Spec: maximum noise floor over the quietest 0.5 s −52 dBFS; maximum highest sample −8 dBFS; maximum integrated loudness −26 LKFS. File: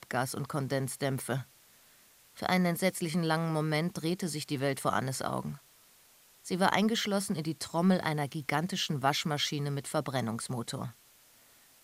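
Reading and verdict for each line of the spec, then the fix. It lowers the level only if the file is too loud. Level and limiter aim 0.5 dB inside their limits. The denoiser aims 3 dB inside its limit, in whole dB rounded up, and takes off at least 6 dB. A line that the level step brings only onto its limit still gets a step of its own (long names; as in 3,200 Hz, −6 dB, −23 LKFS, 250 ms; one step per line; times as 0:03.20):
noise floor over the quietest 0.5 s −61 dBFS: in spec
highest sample −11.5 dBFS: in spec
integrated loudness −31.5 LKFS: in spec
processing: no processing needed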